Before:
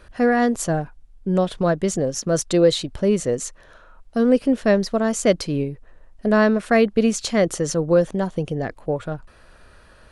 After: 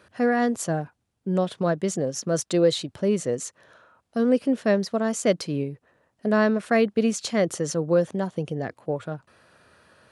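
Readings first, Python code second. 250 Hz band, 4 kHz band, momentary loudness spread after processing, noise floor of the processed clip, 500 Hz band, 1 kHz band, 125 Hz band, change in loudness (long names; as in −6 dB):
−4.0 dB, −4.0 dB, 10 LU, −76 dBFS, −4.0 dB, −4.0 dB, −4.0 dB, −4.0 dB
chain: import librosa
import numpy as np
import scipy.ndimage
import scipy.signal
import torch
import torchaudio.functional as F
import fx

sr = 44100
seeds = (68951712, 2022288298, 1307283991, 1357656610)

y = scipy.signal.sosfilt(scipy.signal.butter(4, 99.0, 'highpass', fs=sr, output='sos'), x)
y = F.gain(torch.from_numpy(y), -4.0).numpy()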